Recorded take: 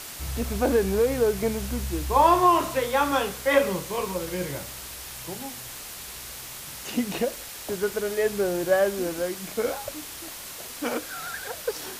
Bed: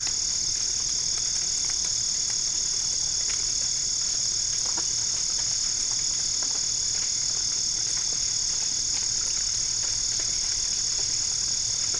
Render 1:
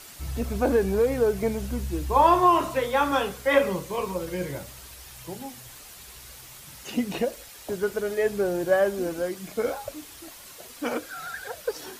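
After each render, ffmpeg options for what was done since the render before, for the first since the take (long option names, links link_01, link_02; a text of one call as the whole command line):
ffmpeg -i in.wav -af "afftdn=noise_reduction=8:noise_floor=-39" out.wav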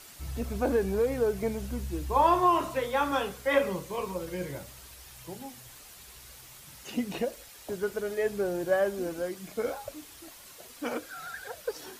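ffmpeg -i in.wav -af "volume=-4.5dB" out.wav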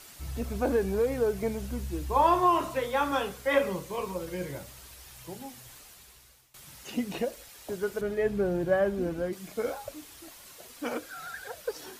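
ffmpeg -i in.wav -filter_complex "[0:a]asettb=1/sr,asplit=3[link_01][link_02][link_03];[link_01]atrim=end=8.014[link_04];[link_02]atrim=start=8.01:end=9.33,asetpts=PTS-STARTPTS,afade=type=in:duration=0.004:curve=qsin,afade=type=out:start_time=1.316:duration=0.004:curve=qsin,bass=frequency=250:gain=10,treble=frequency=4000:gain=-9[link_05];[link_03]atrim=start=9.326[link_06];[link_04][link_05]acrossfade=duration=0.004:curve1=hsin:curve2=qsin[link_07];[link_07][link_06]acrossfade=duration=0.004:curve1=qsin:curve2=hsin,asplit=2[link_08][link_09];[link_08]atrim=end=6.54,asetpts=PTS-STARTPTS,afade=type=out:start_time=5.74:duration=0.8:silence=0.1[link_10];[link_09]atrim=start=6.54,asetpts=PTS-STARTPTS,afade=type=in:duration=0.004:curve=hsin:silence=0.1[link_11];[link_10][link_11]concat=n=2:v=0:a=1" out.wav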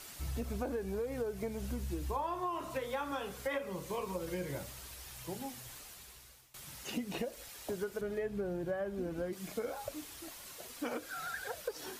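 ffmpeg -i in.wav -af "acompressor=threshold=-34dB:ratio=8" out.wav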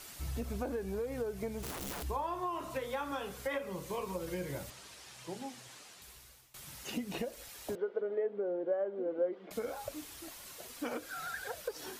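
ffmpeg -i in.wav -filter_complex "[0:a]asplit=3[link_01][link_02][link_03];[link_01]afade=type=out:start_time=1.62:duration=0.02[link_04];[link_02]aeval=exprs='(mod(66.8*val(0)+1,2)-1)/66.8':channel_layout=same,afade=type=in:start_time=1.62:duration=0.02,afade=type=out:start_time=2.02:duration=0.02[link_05];[link_03]afade=type=in:start_time=2.02:duration=0.02[link_06];[link_04][link_05][link_06]amix=inputs=3:normalize=0,asettb=1/sr,asplit=3[link_07][link_08][link_09];[link_07]atrim=end=4.704[link_10];[link_08]atrim=start=4.7:end=6.02,asetpts=PTS-STARTPTS,afade=type=in:duration=0.004:curve=qsin,afade=type=out:start_time=1.316:duration=0.004:curve=qsin,highpass=160,lowpass=7800[link_11];[link_09]atrim=start=6.016[link_12];[link_10][link_11]acrossfade=duration=0.004:curve1=hsin:curve2=qsin[link_13];[link_13][link_12]acrossfade=duration=0.004:curve1=qsin:curve2=hsin,asettb=1/sr,asplit=3[link_14][link_15][link_16];[link_14]atrim=end=7.754[link_17];[link_15]atrim=start=7.75:end=9.51,asetpts=PTS-STARTPTS,afade=type=in:duration=0.004:curve=qsin,afade=type=out:start_time=1.756:duration=0.004:curve=qsin,highpass=frequency=280:width=0.5412,highpass=frequency=280:width=1.3066,equalizer=frequency=500:width_type=q:width=4:gain=10,equalizer=frequency=1100:width_type=q:width=4:gain=-3,equalizer=frequency=1700:width_type=q:width=4:gain=-7,equalizer=frequency=2500:width_type=q:width=4:gain=-10,lowpass=frequency=2600:width=0.5412,lowpass=frequency=2600:width=1.3066[link_18];[link_16]atrim=start=9.506[link_19];[link_17][link_18]acrossfade=duration=0.004:curve1=hsin:curve2=qsin[link_20];[link_20][link_19]acrossfade=duration=0.004:curve1=qsin:curve2=hsin" out.wav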